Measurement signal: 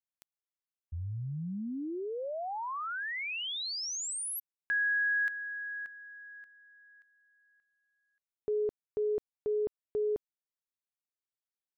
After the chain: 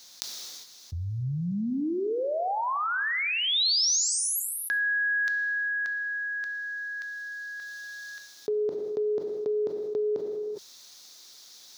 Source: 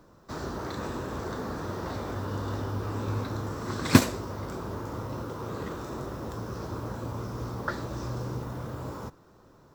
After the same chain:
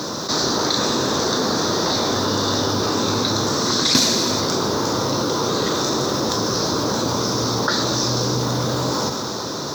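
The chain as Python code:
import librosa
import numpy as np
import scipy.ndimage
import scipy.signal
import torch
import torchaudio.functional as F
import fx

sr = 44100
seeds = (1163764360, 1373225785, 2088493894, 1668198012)

y = scipy.signal.sosfilt(scipy.signal.butter(2, 170.0, 'highpass', fs=sr, output='sos'), x)
y = fx.band_shelf(y, sr, hz=4800.0, db=14.5, octaves=1.1)
y = fx.rev_gated(y, sr, seeds[0], gate_ms=430, shape='falling', drr_db=10.0)
y = fx.env_flatten(y, sr, amount_pct=70)
y = y * librosa.db_to_amplitude(-2.5)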